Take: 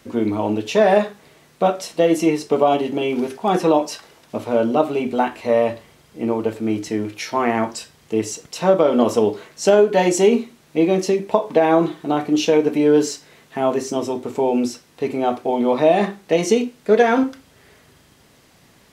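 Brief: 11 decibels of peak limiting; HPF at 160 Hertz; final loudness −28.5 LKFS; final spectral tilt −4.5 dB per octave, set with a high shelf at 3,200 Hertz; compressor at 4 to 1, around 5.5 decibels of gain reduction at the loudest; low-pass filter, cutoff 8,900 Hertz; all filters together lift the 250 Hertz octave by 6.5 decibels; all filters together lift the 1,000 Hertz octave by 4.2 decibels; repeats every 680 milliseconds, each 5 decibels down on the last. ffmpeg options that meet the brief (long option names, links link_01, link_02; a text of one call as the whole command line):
ffmpeg -i in.wav -af "highpass=160,lowpass=8900,equalizer=frequency=250:width_type=o:gain=8.5,equalizer=frequency=1000:width_type=o:gain=4.5,highshelf=frequency=3200:gain=7,acompressor=threshold=-12dB:ratio=4,alimiter=limit=-10dB:level=0:latency=1,aecho=1:1:680|1360|2040|2720|3400|4080|4760:0.562|0.315|0.176|0.0988|0.0553|0.031|0.0173,volume=-9.5dB" out.wav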